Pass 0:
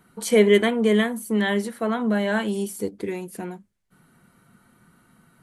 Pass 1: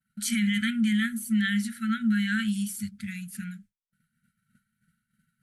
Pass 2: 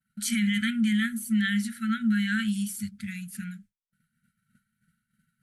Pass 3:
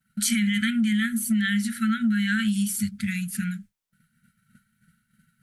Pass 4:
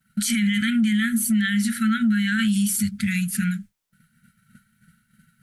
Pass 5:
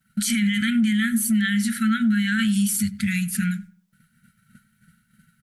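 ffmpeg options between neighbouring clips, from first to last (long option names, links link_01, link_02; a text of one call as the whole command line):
ffmpeg -i in.wav -af "afftfilt=real='re*(1-between(b*sr/4096,240,1300))':imag='im*(1-between(b*sr/4096,240,1300))':win_size=4096:overlap=0.75,alimiter=limit=-18dB:level=0:latency=1:release=13,agate=range=-33dB:threshold=-47dB:ratio=3:detection=peak" out.wav
ffmpeg -i in.wav -af anull out.wav
ffmpeg -i in.wav -af "acompressor=threshold=-29dB:ratio=6,volume=8.5dB" out.wav
ffmpeg -i in.wav -af "alimiter=limit=-20dB:level=0:latency=1:release=21,volume=5.5dB" out.wav
ffmpeg -i in.wav -filter_complex "[0:a]asplit=2[link_01][link_02];[link_02]adelay=96,lowpass=frequency=1900:poles=1,volume=-19dB,asplit=2[link_03][link_04];[link_04]adelay=96,lowpass=frequency=1900:poles=1,volume=0.31,asplit=2[link_05][link_06];[link_06]adelay=96,lowpass=frequency=1900:poles=1,volume=0.31[link_07];[link_01][link_03][link_05][link_07]amix=inputs=4:normalize=0" out.wav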